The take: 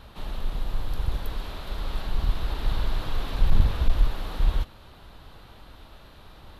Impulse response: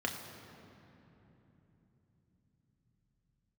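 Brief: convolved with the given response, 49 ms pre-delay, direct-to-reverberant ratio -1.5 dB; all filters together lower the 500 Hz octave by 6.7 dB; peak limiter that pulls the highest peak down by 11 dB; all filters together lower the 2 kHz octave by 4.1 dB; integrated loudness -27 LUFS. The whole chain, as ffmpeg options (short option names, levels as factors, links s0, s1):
-filter_complex "[0:a]equalizer=f=500:t=o:g=-8.5,equalizer=f=2000:t=o:g=-5,alimiter=limit=0.112:level=0:latency=1,asplit=2[s0][s1];[1:a]atrim=start_sample=2205,adelay=49[s2];[s1][s2]afir=irnorm=-1:irlink=0,volume=0.668[s3];[s0][s3]amix=inputs=2:normalize=0,volume=1.88"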